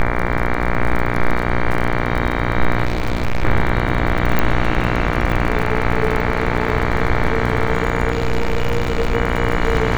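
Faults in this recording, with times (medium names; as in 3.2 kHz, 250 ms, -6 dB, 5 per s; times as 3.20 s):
buzz 60 Hz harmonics 39 -21 dBFS
crackle 32 per s -21 dBFS
2.85–3.44 s: clipped -13.5 dBFS
4.39 s: pop -3 dBFS
8.12–9.15 s: clipped -12.5 dBFS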